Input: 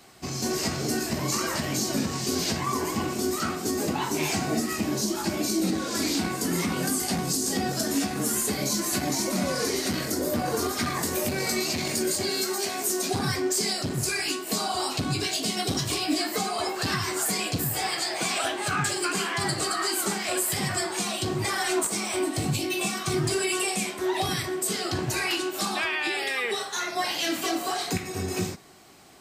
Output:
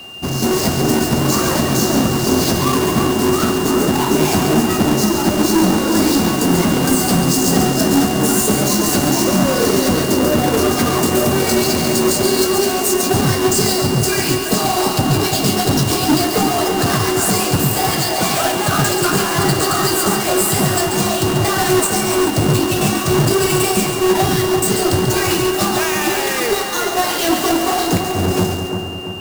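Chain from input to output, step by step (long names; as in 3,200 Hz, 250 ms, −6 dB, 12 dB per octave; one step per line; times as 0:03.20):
each half-wave held at its own peak
parametric band 2,500 Hz −7.5 dB 1.2 octaves
steady tone 2,800 Hz −40 dBFS
echo with a time of its own for lows and highs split 1,800 Hz, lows 338 ms, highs 139 ms, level −6.5 dB
level +7 dB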